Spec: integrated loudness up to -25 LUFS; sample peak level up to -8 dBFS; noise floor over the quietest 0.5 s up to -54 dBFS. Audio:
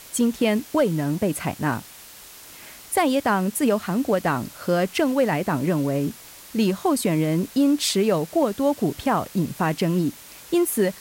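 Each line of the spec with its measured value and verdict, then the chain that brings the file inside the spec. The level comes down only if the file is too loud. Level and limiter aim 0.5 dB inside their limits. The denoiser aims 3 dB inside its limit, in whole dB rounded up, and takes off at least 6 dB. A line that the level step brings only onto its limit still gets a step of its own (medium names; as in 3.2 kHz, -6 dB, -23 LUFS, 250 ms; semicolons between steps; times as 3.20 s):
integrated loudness -23.0 LUFS: fail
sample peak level -10.0 dBFS: pass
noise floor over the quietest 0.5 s -44 dBFS: fail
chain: noise reduction 11 dB, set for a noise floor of -44 dBFS; trim -2.5 dB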